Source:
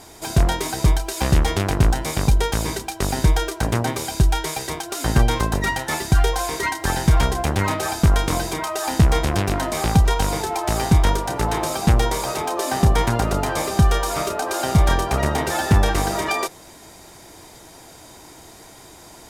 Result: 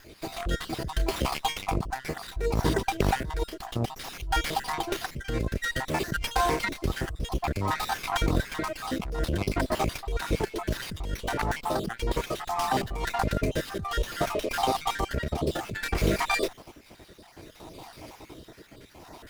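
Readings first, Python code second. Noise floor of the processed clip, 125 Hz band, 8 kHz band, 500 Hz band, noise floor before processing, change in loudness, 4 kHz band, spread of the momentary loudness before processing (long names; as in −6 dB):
−53 dBFS, −12.5 dB, −12.0 dB, −6.0 dB, −44 dBFS, −9.0 dB, −6.5 dB, 6 LU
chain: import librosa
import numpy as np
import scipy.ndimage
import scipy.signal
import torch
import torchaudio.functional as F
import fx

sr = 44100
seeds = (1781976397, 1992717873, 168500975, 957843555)

y = fx.spec_dropout(x, sr, seeds[0], share_pct=57)
y = fx.over_compress(y, sr, threshold_db=-24.0, ratio=-1.0)
y = fx.rotary(y, sr, hz=0.6)
y = fx.running_max(y, sr, window=5)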